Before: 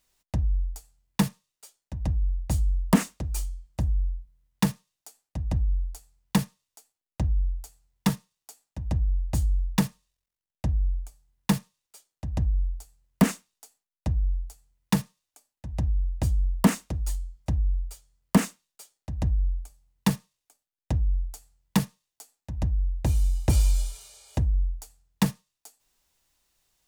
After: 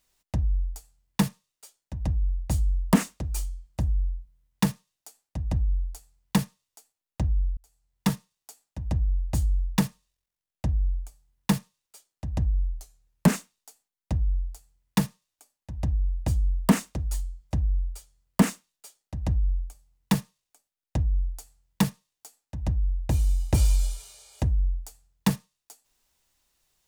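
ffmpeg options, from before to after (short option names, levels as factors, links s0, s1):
-filter_complex "[0:a]asplit=4[s0][s1][s2][s3];[s0]atrim=end=7.57,asetpts=PTS-STARTPTS,afade=t=out:st=7.566:d=0.004:c=hsin[s4];[s1]atrim=start=7.57:end=12.734,asetpts=PTS-STARTPTS,afade=t=in:d=0.54[s5];[s2]atrim=start=12.73:end=13.27,asetpts=PTS-STARTPTS,asetrate=40572,aresample=44100[s6];[s3]atrim=start=13.266[s7];[s4][s5]concat=n=2:v=0:a=1[s8];[s8][s6]acrossfade=d=0.004:c1=hsin:c2=hsin[s9];[s9][s7]acrossfade=d=0.004:c1=hsin:c2=hsin"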